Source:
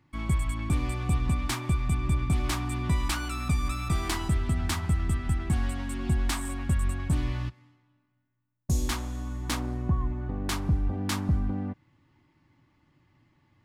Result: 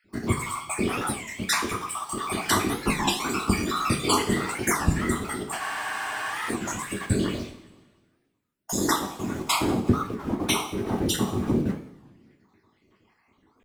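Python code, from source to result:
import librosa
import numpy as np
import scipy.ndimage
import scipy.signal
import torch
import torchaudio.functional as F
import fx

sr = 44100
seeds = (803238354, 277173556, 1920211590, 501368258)

p1 = fx.spec_dropout(x, sr, seeds[0], share_pct=58)
p2 = scipy.signal.sosfilt(scipy.signal.butter(4, 180.0, 'highpass', fs=sr, output='sos'), p1)
p3 = np.where(np.abs(p2) >= 10.0 ** (-44.0 / 20.0), p2, 0.0)
p4 = p2 + (p3 * 10.0 ** (-4.0 / 20.0))
p5 = fx.whisperise(p4, sr, seeds[1])
p6 = fx.echo_feedback(p5, sr, ms=191, feedback_pct=50, wet_db=-23)
p7 = fx.rev_double_slope(p6, sr, seeds[2], early_s=0.49, late_s=1.8, knee_db=-22, drr_db=0.5)
p8 = fx.spec_freeze(p7, sr, seeds[3], at_s=5.62, hold_s=0.89)
p9 = fx.record_warp(p8, sr, rpm=33.33, depth_cents=250.0)
y = p9 * 10.0 ** (5.5 / 20.0)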